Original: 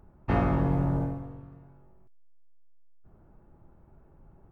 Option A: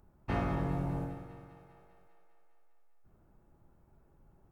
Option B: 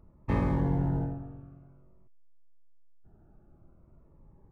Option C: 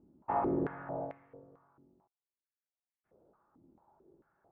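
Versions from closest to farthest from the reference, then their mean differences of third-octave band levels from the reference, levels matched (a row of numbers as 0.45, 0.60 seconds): B, A, C; 1.5, 3.0, 5.0 decibels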